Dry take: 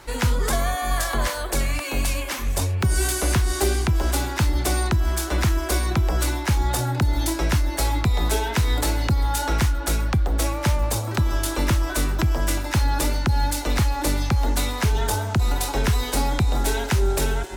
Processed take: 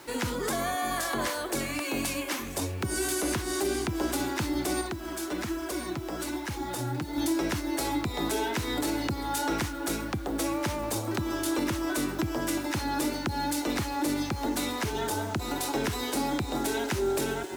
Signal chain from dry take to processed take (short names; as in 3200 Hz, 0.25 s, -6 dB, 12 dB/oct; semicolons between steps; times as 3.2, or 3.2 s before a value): HPF 140 Hz 12 dB/oct; bell 310 Hz +8.5 dB 0.6 oct; limiter -15.5 dBFS, peak gain reduction 7.5 dB; 4.81–7.18 flange 1.2 Hz, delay 0.5 ms, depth 8.4 ms, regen +45%; bit-crush 8-bit; gain -4 dB